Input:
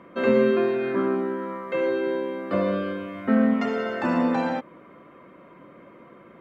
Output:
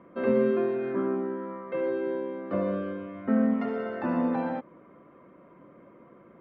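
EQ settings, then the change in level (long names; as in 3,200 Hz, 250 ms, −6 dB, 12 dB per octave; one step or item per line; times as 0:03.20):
high-frequency loss of the air 170 metres
high-shelf EQ 2,100 Hz −10 dB
−3.5 dB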